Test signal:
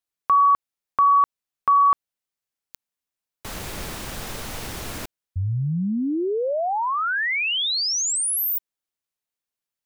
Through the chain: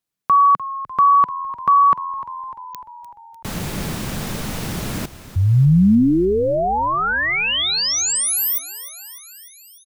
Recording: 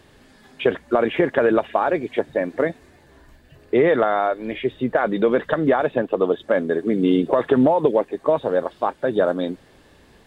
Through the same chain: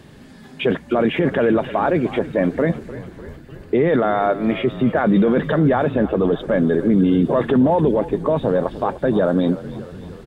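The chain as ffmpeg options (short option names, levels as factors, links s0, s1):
-filter_complex "[0:a]equalizer=f=170:t=o:w=1.4:g=11,alimiter=limit=0.237:level=0:latency=1:release=11,asplit=2[s0][s1];[s1]asplit=7[s2][s3][s4][s5][s6][s7][s8];[s2]adelay=299,afreqshift=-43,volume=0.178[s9];[s3]adelay=598,afreqshift=-86,volume=0.112[s10];[s4]adelay=897,afreqshift=-129,volume=0.0708[s11];[s5]adelay=1196,afreqshift=-172,volume=0.0447[s12];[s6]adelay=1495,afreqshift=-215,volume=0.0279[s13];[s7]adelay=1794,afreqshift=-258,volume=0.0176[s14];[s8]adelay=2093,afreqshift=-301,volume=0.0111[s15];[s9][s10][s11][s12][s13][s14][s15]amix=inputs=7:normalize=0[s16];[s0][s16]amix=inputs=2:normalize=0,volume=1.5"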